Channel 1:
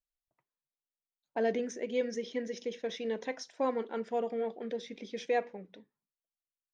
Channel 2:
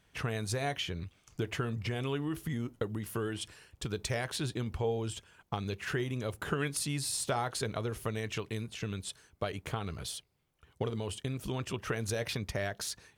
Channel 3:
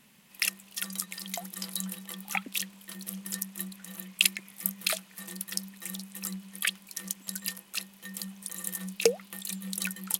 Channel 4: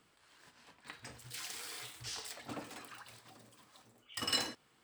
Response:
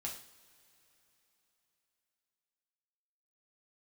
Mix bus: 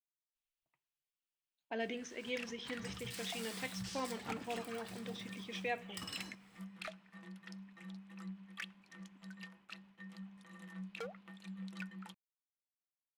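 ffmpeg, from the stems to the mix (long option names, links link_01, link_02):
-filter_complex "[0:a]equalizer=frequency=2800:width=1.6:gain=11,adelay=350,volume=-8dB,asplit=2[link_01][link_02];[link_02]volume=-12dB[link_03];[2:a]agate=range=-33dB:threshold=-48dB:ratio=3:detection=peak,lowpass=1900,volume=29.5dB,asoftclip=hard,volume=-29.5dB,adelay=1950,volume=-7dB,asplit=2[link_04][link_05];[link_05]volume=-21dB[link_06];[3:a]lowshelf=frequency=140:gain=8,acompressor=threshold=-47dB:ratio=6,adelay=1800,volume=1dB,asplit=2[link_07][link_08];[link_08]volume=-10.5dB[link_09];[4:a]atrim=start_sample=2205[link_10];[link_03][link_06][link_09]amix=inputs=3:normalize=0[link_11];[link_11][link_10]afir=irnorm=-1:irlink=0[link_12];[link_01][link_04][link_07][link_12]amix=inputs=4:normalize=0,equalizer=frequency=480:width=1.9:gain=-5.5"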